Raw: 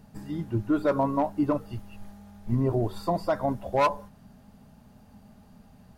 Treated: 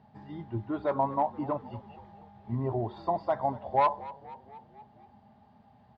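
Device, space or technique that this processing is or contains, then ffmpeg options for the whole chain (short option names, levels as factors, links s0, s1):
frequency-shifting delay pedal into a guitar cabinet: -filter_complex "[0:a]asplit=6[s0][s1][s2][s3][s4][s5];[s1]adelay=238,afreqshift=-43,volume=0.126[s6];[s2]adelay=476,afreqshift=-86,volume=0.0741[s7];[s3]adelay=714,afreqshift=-129,volume=0.0437[s8];[s4]adelay=952,afreqshift=-172,volume=0.026[s9];[s5]adelay=1190,afreqshift=-215,volume=0.0153[s10];[s0][s6][s7][s8][s9][s10]amix=inputs=6:normalize=0,highpass=110,equalizer=f=180:t=q:w=4:g=-9,equalizer=f=290:t=q:w=4:g=-7,equalizer=f=490:t=q:w=4:g=-6,equalizer=f=830:t=q:w=4:g=8,equalizer=f=1400:t=q:w=4:g=-6,equalizer=f=2600:t=q:w=4:g=-7,lowpass=f=3500:w=0.5412,lowpass=f=3500:w=1.3066,volume=0.75"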